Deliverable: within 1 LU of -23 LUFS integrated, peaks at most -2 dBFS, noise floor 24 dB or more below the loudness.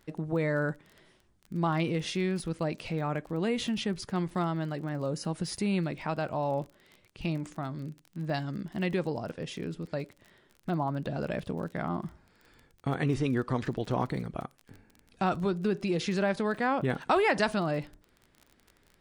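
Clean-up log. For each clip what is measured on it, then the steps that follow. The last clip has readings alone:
ticks 28/s; loudness -31.5 LUFS; peak -13.5 dBFS; loudness target -23.0 LUFS
-> de-click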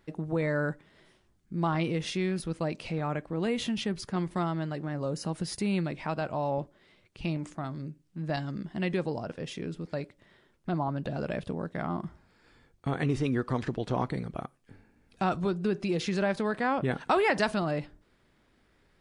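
ticks 0/s; loudness -31.5 LUFS; peak -13.5 dBFS; loudness target -23.0 LUFS
-> gain +8.5 dB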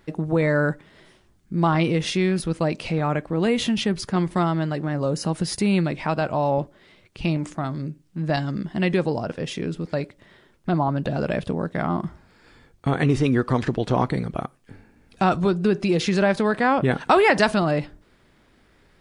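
loudness -23.0 LUFS; peak -5.0 dBFS; noise floor -59 dBFS

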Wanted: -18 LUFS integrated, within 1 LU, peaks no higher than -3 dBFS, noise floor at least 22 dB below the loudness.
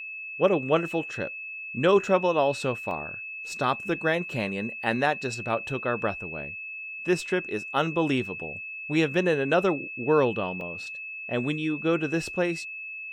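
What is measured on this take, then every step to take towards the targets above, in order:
dropouts 2; longest dropout 1.9 ms; steady tone 2600 Hz; tone level -35 dBFS; loudness -27.0 LUFS; peak -8.5 dBFS; loudness target -18.0 LUFS
-> interpolate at 2.91/10.61, 1.9 ms; notch 2600 Hz, Q 30; gain +9 dB; limiter -3 dBFS

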